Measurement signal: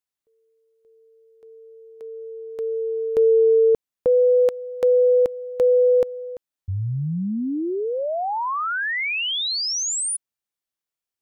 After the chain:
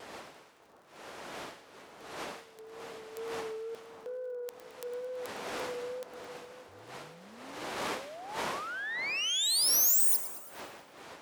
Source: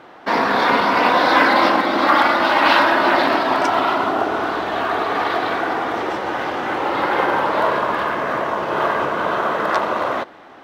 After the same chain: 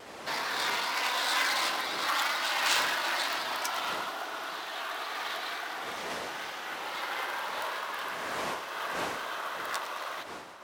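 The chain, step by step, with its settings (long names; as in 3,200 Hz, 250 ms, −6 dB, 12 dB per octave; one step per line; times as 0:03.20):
stylus tracing distortion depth 0.056 ms
wind on the microphone 530 Hz −22 dBFS
first difference
pitch vibrato 2.2 Hz 36 cents
on a send: echo with a time of its own for lows and highs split 1,500 Hz, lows 598 ms, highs 109 ms, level −13.5 dB
on the sum: surface crackle 60 per second −52 dBFS
saturating transformer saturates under 2,500 Hz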